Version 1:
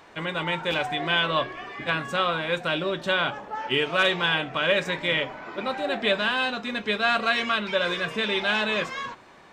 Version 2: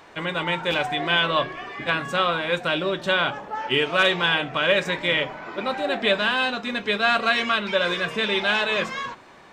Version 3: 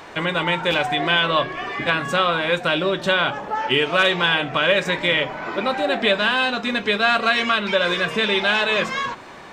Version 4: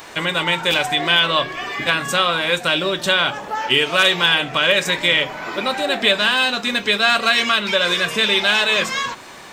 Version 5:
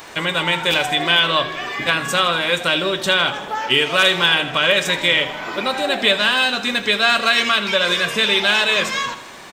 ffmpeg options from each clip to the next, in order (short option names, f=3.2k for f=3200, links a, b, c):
-af "bandreject=f=53.43:t=h:w=4,bandreject=f=106.86:t=h:w=4,bandreject=f=160.29:t=h:w=4,bandreject=f=213.72:t=h:w=4,bandreject=f=267.15:t=h:w=4,volume=2.5dB"
-af "acompressor=threshold=-34dB:ratio=1.5,volume=8.5dB"
-af "crystalizer=i=3.5:c=0,volume=-1dB"
-af "aecho=1:1:80|160|240|320|400|480:0.188|0.107|0.0612|0.0349|0.0199|0.0113"